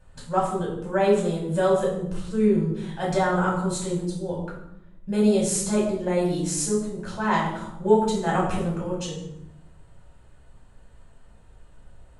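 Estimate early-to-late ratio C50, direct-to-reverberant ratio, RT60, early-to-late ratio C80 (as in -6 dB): 4.0 dB, -5.0 dB, 0.80 s, 7.0 dB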